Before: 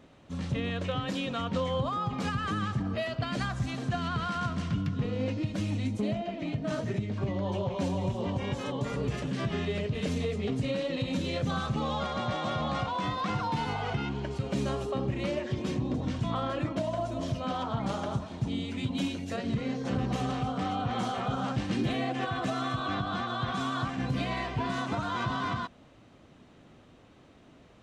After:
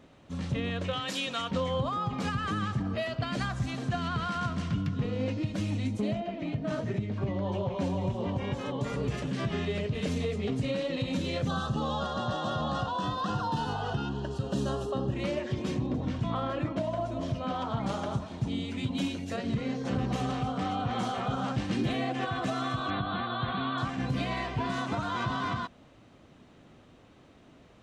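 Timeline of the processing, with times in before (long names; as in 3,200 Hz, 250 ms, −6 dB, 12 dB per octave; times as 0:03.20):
0:00.93–0:01.51: spectral tilt +3 dB per octave
0:06.20–0:08.80: high-shelf EQ 4,700 Hz −7.5 dB
0:11.48–0:15.15: Butterworth band-reject 2,200 Hz, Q 2.3
0:15.86–0:17.62: high-shelf EQ 5,300 Hz −9 dB
0:22.90–0:23.78: linear-phase brick-wall low-pass 4,500 Hz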